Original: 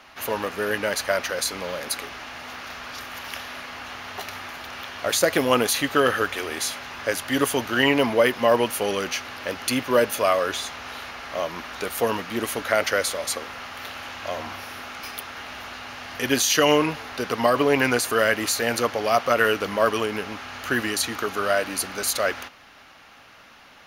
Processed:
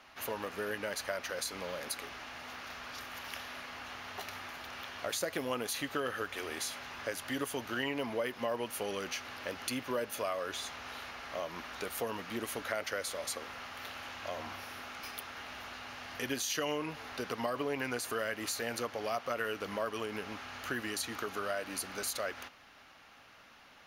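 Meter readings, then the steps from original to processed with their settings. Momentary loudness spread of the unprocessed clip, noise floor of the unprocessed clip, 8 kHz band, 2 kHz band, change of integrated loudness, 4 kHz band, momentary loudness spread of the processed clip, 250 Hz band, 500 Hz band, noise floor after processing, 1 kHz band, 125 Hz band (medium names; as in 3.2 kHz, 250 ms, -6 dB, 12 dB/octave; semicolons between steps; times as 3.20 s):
15 LU, -49 dBFS, -12.5 dB, -13.5 dB, -14.5 dB, -12.5 dB, 9 LU, -14.0 dB, -14.5 dB, -58 dBFS, -13.5 dB, -13.5 dB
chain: compression 2.5:1, threshold -26 dBFS, peak gain reduction 9 dB; trim -8.5 dB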